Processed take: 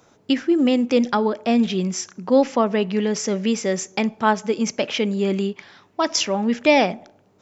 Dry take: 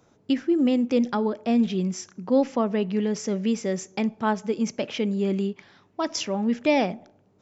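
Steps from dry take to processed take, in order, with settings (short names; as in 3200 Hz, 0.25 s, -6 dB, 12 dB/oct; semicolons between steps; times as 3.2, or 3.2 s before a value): low shelf 440 Hz -7.5 dB; gain +8.5 dB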